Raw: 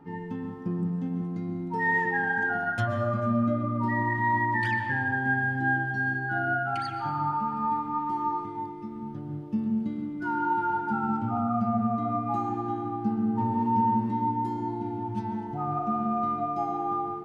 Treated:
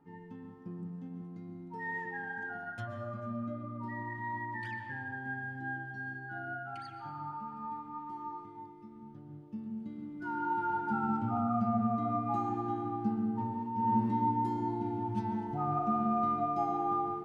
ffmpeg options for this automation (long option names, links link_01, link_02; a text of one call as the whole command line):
ffmpeg -i in.wav -af "volume=7dB,afade=type=in:start_time=9.75:duration=1.23:silence=0.354813,afade=type=out:start_time=13.02:duration=0.72:silence=0.334965,afade=type=in:start_time=13.74:duration=0.23:silence=0.281838" out.wav